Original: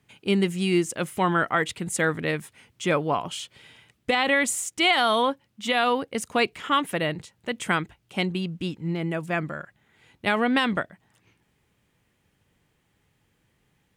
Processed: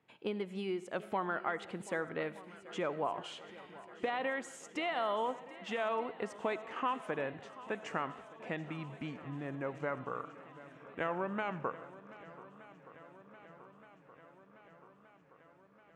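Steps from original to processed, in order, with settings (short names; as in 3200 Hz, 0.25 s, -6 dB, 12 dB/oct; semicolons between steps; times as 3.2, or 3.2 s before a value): speed glide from 106% -> 69%; compressor 4:1, threshold -29 dBFS, peak gain reduction 11 dB; band-pass 730 Hz, Q 0.69; swung echo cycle 1.222 s, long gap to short 1.5:1, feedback 65%, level -18 dB; reverb RT60 0.90 s, pre-delay 35 ms, DRR 16 dB; gain -1.5 dB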